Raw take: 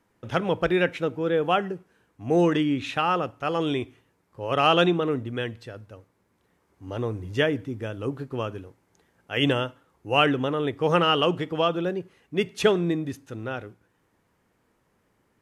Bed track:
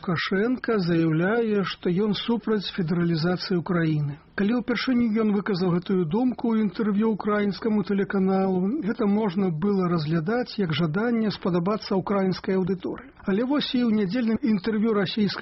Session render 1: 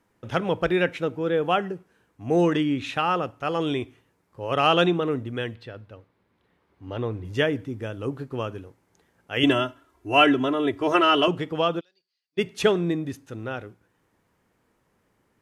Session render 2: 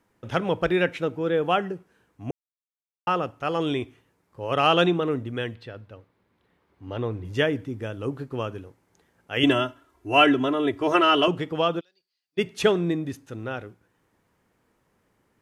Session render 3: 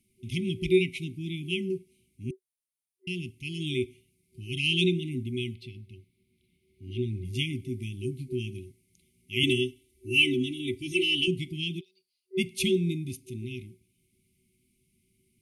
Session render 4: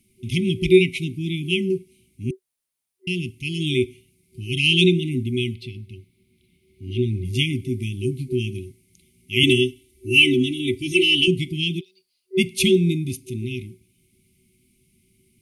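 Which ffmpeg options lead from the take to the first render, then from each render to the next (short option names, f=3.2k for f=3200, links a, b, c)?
-filter_complex "[0:a]asettb=1/sr,asplit=3[a][b][c];[a]atrim=end=5.554[d];[b]atrim=start=5.55:end=7.25,asetpts=PTS-STARTPTS,afade=t=in:d=0.004:c=qsin,afade=t=out:st=1.696:d=0.004:c=qsin,highshelf=f=5k:t=q:w=1.5:g=-9[e];[c]atrim=start=7.246[f];[d][e]acrossfade=d=0.004:c1=hsin:c2=qsin[g];[g][f]acrossfade=d=0.004:c1=qsin:c2=hsin,asettb=1/sr,asplit=3[h][i][j];[h]atrim=end=9.434[k];[i]atrim=start=9.43:end=11.28,asetpts=PTS-STARTPTS,afade=t=in:d=0.004:c=qsin,afade=t=out:st=1.846:d=0.004:c=qsin,aecho=1:1:3:0.98,atrim=end_sample=81585[l];[j]atrim=start=11.276[m];[k][l]acrossfade=d=0.004:c1=hsin:c2=qsin[n];[n][m]acrossfade=d=0.004:c1=qsin:c2=hsin,asplit=3[o][p][q];[o]afade=t=out:st=11.79:d=0.02[r];[p]bandpass=f=4.6k:t=q:w=13,afade=t=in:st=11.79:d=0.02,afade=t=out:st=12.37:d=0.02[s];[q]afade=t=in:st=12.37:d=0.02[t];[r][s][t]amix=inputs=3:normalize=0"
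-filter_complex "[0:a]asplit=3[a][b][c];[a]atrim=end=2.31,asetpts=PTS-STARTPTS,afade=t=out:st=2.306:d=0.004:c=hsin[d];[b]atrim=start=2.31:end=3.07,asetpts=PTS-STARTPTS,volume=0[e];[c]atrim=start=3.07,asetpts=PTS-STARTPTS,afade=t=in:d=0.004:c=hsin[f];[d][e][f]concat=n=3:v=0:a=1"
-af "afftfilt=real='re*(1-between(b*sr/4096,380,2000))':imag='im*(1-between(b*sr/4096,380,2000))':win_size=4096:overlap=0.75,superequalizer=6b=0.316:7b=3.16:9b=0.398:11b=0.447:16b=3.16"
-af "volume=8.5dB,alimiter=limit=-3dB:level=0:latency=1"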